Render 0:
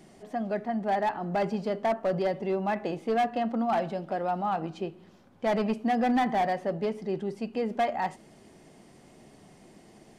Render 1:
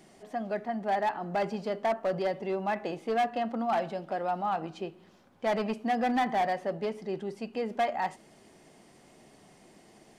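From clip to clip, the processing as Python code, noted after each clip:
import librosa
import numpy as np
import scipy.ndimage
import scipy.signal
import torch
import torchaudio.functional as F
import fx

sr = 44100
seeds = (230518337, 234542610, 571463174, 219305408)

y = fx.low_shelf(x, sr, hz=350.0, db=-6.5)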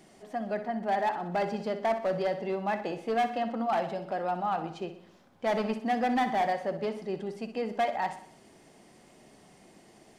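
y = fx.echo_feedback(x, sr, ms=62, feedback_pct=50, wet_db=-11.5)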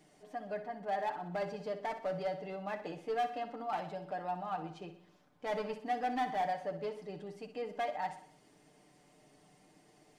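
y = x + 0.66 * np.pad(x, (int(6.7 * sr / 1000.0), 0))[:len(x)]
y = y * 10.0 ** (-9.0 / 20.0)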